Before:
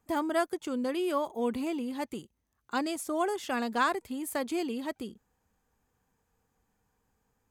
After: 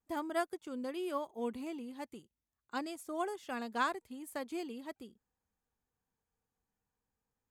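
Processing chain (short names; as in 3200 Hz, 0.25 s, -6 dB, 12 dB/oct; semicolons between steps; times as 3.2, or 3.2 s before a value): vibrato 0.44 Hz 21 cents; upward expander 1.5:1, over -41 dBFS; gain -5 dB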